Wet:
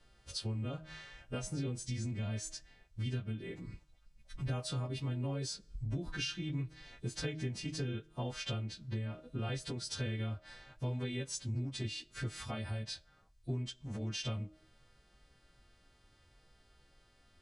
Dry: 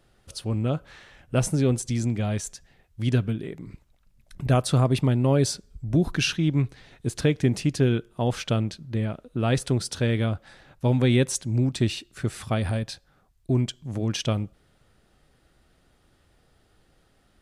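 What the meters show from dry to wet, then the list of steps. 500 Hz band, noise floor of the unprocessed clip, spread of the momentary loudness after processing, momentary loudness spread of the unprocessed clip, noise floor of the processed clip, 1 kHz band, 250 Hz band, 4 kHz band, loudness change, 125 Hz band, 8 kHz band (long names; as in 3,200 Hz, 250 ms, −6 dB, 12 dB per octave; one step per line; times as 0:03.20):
−17.0 dB, −64 dBFS, 9 LU, 11 LU, −67 dBFS, −15.5 dB, −16.5 dB, −8.5 dB, −14.5 dB, −13.5 dB, −11.5 dB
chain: every partial snapped to a pitch grid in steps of 2 semitones
low-pass filter 5,600 Hz 12 dB per octave
low-shelf EQ 93 Hz +9.5 dB
hum removal 156.9 Hz, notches 4
downward compressor 6 to 1, threshold −29 dBFS, peak gain reduction 14.5 dB
flanger 0.72 Hz, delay 4 ms, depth 7.3 ms, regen −65%
level −2 dB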